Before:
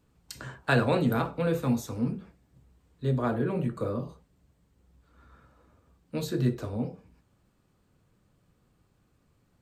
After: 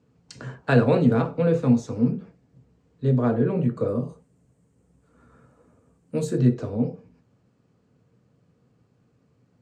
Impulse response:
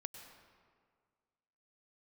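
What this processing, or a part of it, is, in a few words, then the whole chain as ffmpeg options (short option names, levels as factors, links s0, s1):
car door speaker: -filter_complex "[0:a]highpass=83,equalizer=f=120:t=q:w=4:g=9,equalizer=f=170:t=q:w=4:g=5,equalizer=f=250:t=q:w=4:g=8,equalizer=f=460:t=q:w=4:g=9,equalizer=f=670:t=q:w=4:g=3,equalizer=f=3600:t=q:w=4:g=-4,lowpass=f=7300:w=0.5412,lowpass=f=7300:w=1.3066,asettb=1/sr,asplit=3[s0][s1][s2];[s0]atrim=end=3.884[s3];[s1]atrim=start=3.88:end=6.38,asetpts=PTS-STARTPTS,afade=t=in:d=0.004:c=qsin,afade=t=out:st=2.496:d=0.004:c=qsin,highshelf=f=7000:t=q:w=1.5:g=14[s4];[s2]atrim=start=6.376[s5];[s3][s4]acrossfade=d=0.004:c1=hsin:c2=qsin[s6];[s6][s5]acrossfade=d=0.004:c1=qsin:c2=hsin"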